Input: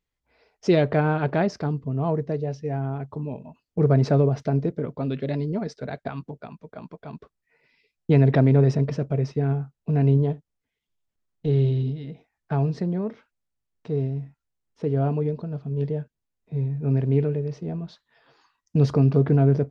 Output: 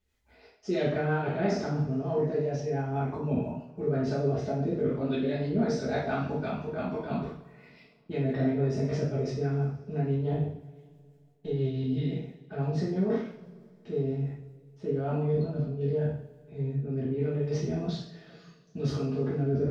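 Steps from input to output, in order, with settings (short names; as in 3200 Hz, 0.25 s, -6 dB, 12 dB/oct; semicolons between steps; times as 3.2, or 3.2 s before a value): spectral trails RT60 0.37 s; reverse; compressor 5:1, threshold -32 dBFS, peak gain reduction 18 dB; reverse; rotary speaker horn 6 Hz, later 0.75 Hz, at 14.27; two-slope reverb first 0.48 s, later 2.5 s, from -22 dB, DRR -8 dB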